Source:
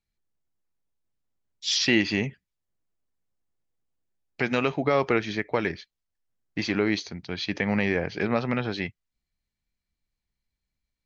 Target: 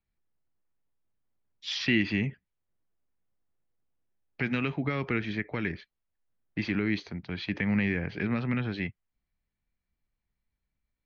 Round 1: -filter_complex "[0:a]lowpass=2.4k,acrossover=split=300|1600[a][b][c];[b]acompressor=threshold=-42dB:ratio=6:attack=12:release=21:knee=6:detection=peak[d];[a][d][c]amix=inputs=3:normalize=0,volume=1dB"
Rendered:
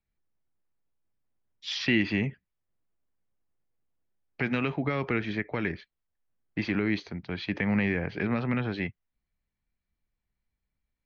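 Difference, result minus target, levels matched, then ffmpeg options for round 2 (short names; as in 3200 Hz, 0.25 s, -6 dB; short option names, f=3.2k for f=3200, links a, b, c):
compressor: peak gain reduction -7.5 dB
-filter_complex "[0:a]lowpass=2.4k,acrossover=split=300|1600[a][b][c];[b]acompressor=threshold=-51dB:ratio=6:attack=12:release=21:knee=6:detection=peak[d];[a][d][c]amix=inputs=3:normalize=0,volume=1dB"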